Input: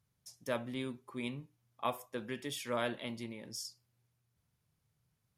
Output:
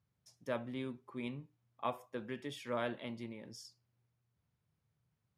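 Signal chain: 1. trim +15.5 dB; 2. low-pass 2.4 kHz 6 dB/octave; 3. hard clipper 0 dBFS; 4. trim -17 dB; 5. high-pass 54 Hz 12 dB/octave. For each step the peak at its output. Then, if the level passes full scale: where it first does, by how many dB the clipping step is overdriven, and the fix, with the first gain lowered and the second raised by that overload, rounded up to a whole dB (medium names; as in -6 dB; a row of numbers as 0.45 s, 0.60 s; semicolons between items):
-4.5 dBFS, -5.0 dBFS, -5.0 dBFS, -22.0 dBFS, -22.0 dBFS; nothing clips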